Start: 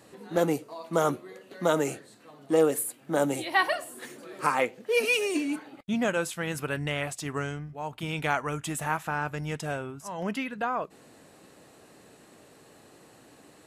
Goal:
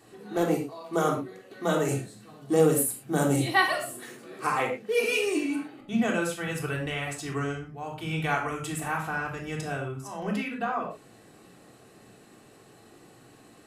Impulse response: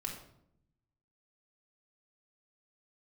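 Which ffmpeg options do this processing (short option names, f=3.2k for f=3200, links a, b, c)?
-filter_complex "[0:a]asettb=1/sr,asplit=3[a][b][c];[a]atrim=end=1.884[d];[b]atrim=start=1.88:end=3.97,asetpts=PTS-STARTPTS,afade=t=in:d=0.004:c=qsin,afade=t=out:st=2.086:d=0.004:c=qsin,bass=f=250:g=9,treble=f=4k:g=6[e];[c]atrim=start=3.966[f];[d][e]acrossfade=d=0.004:c1=hsin:c2=qsin[g];[g][f]acrossfade=d=0.004:c1=qsin:c2=hsin[h];[1:a]atrim=start_sample=2205,afade=t=out:st=0.18:d=0.01,atrim=end_sample=8379[i];[h][i]afir=irnorm=-1:irlink=0"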